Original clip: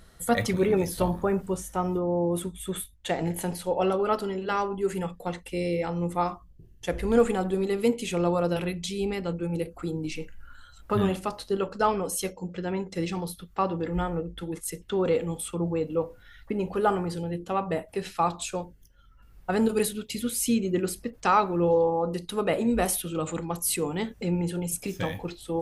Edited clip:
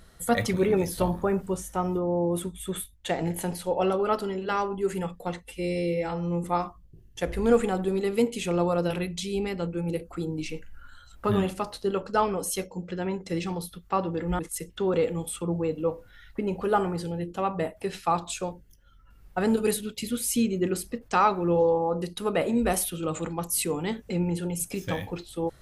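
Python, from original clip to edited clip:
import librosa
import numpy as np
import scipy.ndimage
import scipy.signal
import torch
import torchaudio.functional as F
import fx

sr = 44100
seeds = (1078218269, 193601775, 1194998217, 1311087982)

y = fx.edit(x, sr, fx.stretch_span(start_s=5.42, length_s=0.68, factor=1.5),
    fx.cut(start_s=14.05, length_s=0.46), tone=tone)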